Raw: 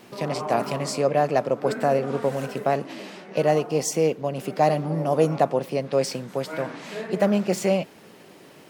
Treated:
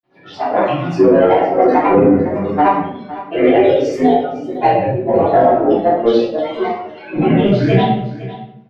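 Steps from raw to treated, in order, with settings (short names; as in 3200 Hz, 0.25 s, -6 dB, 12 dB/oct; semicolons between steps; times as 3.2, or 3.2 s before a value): short-time reversal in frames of 44 ms; spectral noise reduction 24 dB; dynamic EQ 3000 Hz, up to +6 dB, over -53 dBFS, Q 1.6; grains, pitch spread up and down by 7 st; added harmonics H 7 -29 dB, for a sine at -10.5 dBFS; air absorption 280 m; on a send: echo 0.507 s -16.5 dB; on the sum: shoebox room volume 150 m³, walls mixed, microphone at 3.2 m; maximiser +7.5 dB; gain -1 dB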